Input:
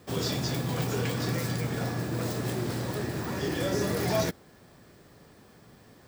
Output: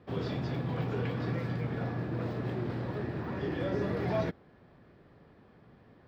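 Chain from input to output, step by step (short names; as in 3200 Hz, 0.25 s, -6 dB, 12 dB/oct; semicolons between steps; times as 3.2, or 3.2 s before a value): air absorption 370 m; gain -2.5 dB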